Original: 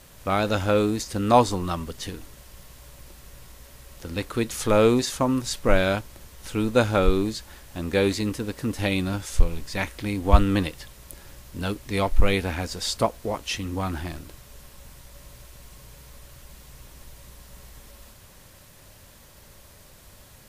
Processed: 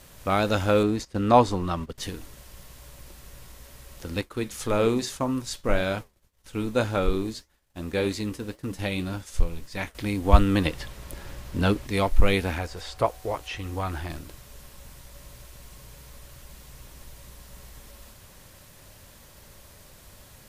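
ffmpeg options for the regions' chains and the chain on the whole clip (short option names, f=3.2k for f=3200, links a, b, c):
-filter_complex "[0:a]asettb=1/sr,asplit=3[a][b][c];[a]atrim=end=0.834[d];[b]atrim=start=0.83:end=1.98,asetpts=PTS-STARTPTS,afade=t=in:d=0.004:c=qsin,afade=t=out:st=1.146:d=0.004:c=qsin,agate=range=-15dB:threshold=-34dB:ratio=16:release=100:detection=peak,highshelf=f=5.8k:g=-12[e];[c]atrim=start=1.976[f];[d][e]acrossfade=d=0.004:c1=hsin:c2=qsin[g];[g][f]acrossfade=d=0.004:c1=qsin:c2=hsin,asettb=1/sr,asplit=3[h][i][j];[h]atrim=end=4.214[k];[i]atrim=start=4.21:end=9.95,asetpts=PTS-STARTPTS,afade=t=in:d=0.004:c=qsin,afade=t=out:st=5.736:d=0.004:c=qsin,agate=range=-33dB:threshold=-33dB:ratio=3:release=100:detection=peak,flanger=delay=6.6:depth=5.5:regen=-74:speed=1.8:shape=sinusoidal[l];[j]atrim=start=9.946[m];[k][l]acrossfade=d=0.004:c1=hsin:c2=qsin[n];[n][m]acrossfade=d=0.004:c1=qsin:c2=hsin,asettb=1/sr,asplit=3[o][p][q];[o]atrim=end=10.654[r];[p]atrim=start=10.65:end=11.87,asetpts=PTS-STARTPTS,afade=t=in:d=0.004:c=qsin,afade=t=out:st=1.216:d=0.004:c=qsin,highshelf=f=4.8k:g=-9.5,acontrast=65[s];[q]atrim=start=11.866[t];[r][s]acrossfade=d=0.004:c1=hsin:c2=qsin[u];[u][t]acrossfade=d=0.004:c1=qsin:c2=hsin,asettb=1/sr,asplit=3[v][w][x];[v]atrim=end=12.584[y];[w]atrim=start=12.58:end=14.1,asetpts=PTS-STARTPTS,afade=t=in:d=0.004:c=qsin,afade=t=out:st=1.516:d=0.004:c=qsin,acrossover=split=2700[z][aa];[aa]acompressor=threshold=-44dB:ratio=4:attack=1:release=60[ab];[z][ab]amix=inputs=2:normalize=0,equalizer=f=220:w=2.1:g=-11.5,aeval=exprs='val(0)+0.00178*sin(2*PI*750*n/s)':c=same[ac];[x]atrim=start=14.096[ad];[y][ac]acrossfade=d=0.004:c1=hsin:c2=qsin[ae];[ae][ad]acrossfade=d=0.004:c1=qsin:c2=hsin"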